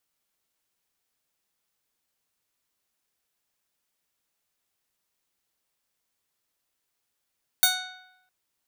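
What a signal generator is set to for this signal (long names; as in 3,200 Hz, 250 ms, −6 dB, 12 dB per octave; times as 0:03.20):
Karplus-Strong string F#5, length 0.66 s, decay 0.87 s, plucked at 0.28, bright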